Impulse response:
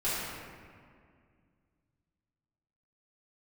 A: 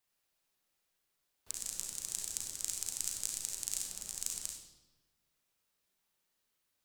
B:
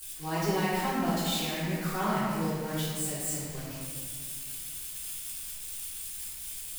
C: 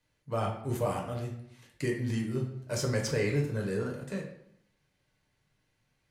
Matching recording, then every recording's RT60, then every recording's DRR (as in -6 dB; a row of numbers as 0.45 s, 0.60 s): B; 1.1 s, 2.1 s, 0.70 s; -0.5 dB, -12.5 dB, -0.5 dB